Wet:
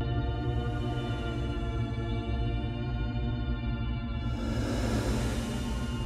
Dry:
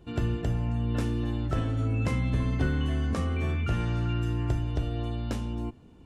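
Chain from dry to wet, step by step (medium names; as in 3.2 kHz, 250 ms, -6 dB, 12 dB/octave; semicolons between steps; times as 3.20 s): band-passed feedback delay 562 ms, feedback 46%, band-pass 2 kHz, level -4 dB; Paulstretch 15×, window 0.10 s, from 4.99 s; vibrato 0.4 Hz 33 cents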